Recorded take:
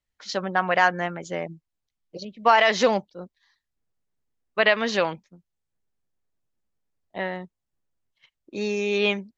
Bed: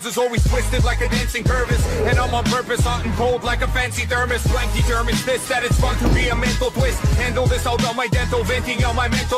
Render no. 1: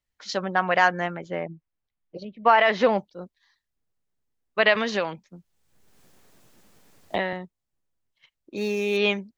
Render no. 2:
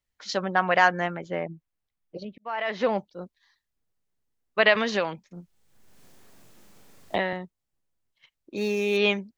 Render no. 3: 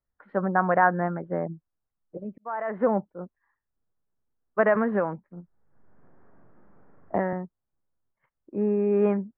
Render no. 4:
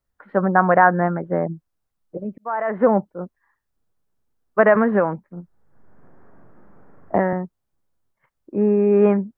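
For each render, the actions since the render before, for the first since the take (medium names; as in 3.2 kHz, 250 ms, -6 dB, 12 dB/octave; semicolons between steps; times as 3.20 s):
1.21–2.98 s: low-pass 2.7 kHz; 4.75–7.33 s: three bands compressed up and down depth 100%; 8.57–8.97 s: median filter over 5 samples
2.38–3.18 s: fade in; 5.27–7.15 s: doubling 40 ms -2 dB
steep low-pass 1.6 kHz 36 dB/octave; dynamic bell 190 Hz, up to +5 dB, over -38 dBFS, Q 0.79
trim +7 dB; peak limiter -2 dBFS, peak gain reduction 1.5 dB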